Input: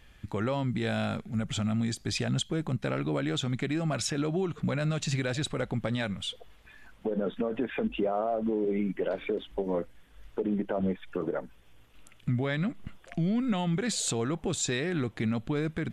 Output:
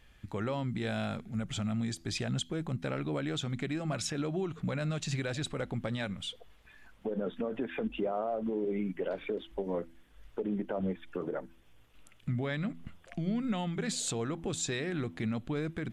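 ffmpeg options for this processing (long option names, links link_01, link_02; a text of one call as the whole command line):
ffmpeg -i in.wav -af "bandreject=frequency=83.1:width_type=h:width=4,bandreject=frequency=166.2:width_type=h:width=4,bandreject=frequency=249.3:width_type=h:width=4,bandreject=frequency=332.4:width_type=h:width=4,volume=-4dB" out.wav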